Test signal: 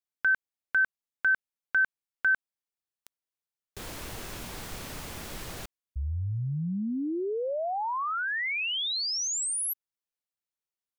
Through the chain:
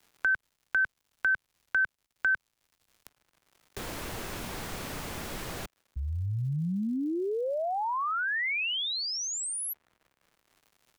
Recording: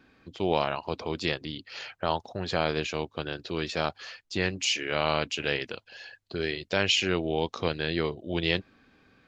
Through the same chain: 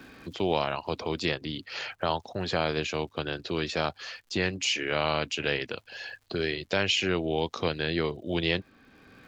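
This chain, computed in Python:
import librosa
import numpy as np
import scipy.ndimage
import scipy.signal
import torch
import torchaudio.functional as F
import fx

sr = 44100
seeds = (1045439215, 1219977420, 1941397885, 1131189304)

y = fx.dmg_crackle(x, sr, seeds[0], per_s=180.0, level_db=-58.0)
y = fx.band_squash(y, sr, depth_pct=40)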